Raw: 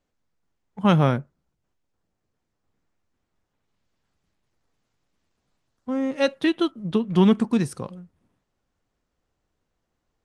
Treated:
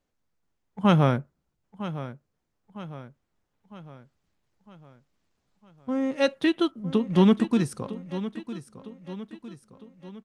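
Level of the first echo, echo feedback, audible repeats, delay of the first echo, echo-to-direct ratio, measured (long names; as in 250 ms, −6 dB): −13.5 dB, 50%, 4, 956 ms, −12.5 dB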